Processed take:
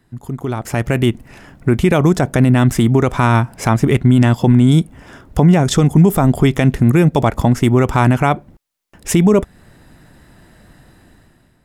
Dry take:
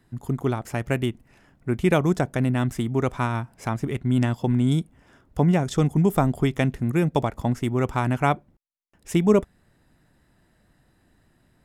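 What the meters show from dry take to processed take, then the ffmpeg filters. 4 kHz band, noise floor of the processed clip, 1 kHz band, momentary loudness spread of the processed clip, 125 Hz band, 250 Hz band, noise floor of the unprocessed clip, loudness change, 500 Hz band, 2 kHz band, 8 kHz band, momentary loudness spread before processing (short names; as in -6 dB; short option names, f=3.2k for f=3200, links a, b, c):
+10.5 dB, -56 dBFS, +8.5 dB, 12 LU, +10.5 dB, +10.0 dB, -64 dBFS, +10.0 dB, +8.0 dB, +9.0 dB, +13.5 dB, 9 LU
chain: -af "acompressor=threshold=-27dB:ratio=1.5,alimiter=limit=-19dB:level=0:latency=1:release=39,dynaudnorm=f=210:g=7:m=13dB,volume=3.5dB"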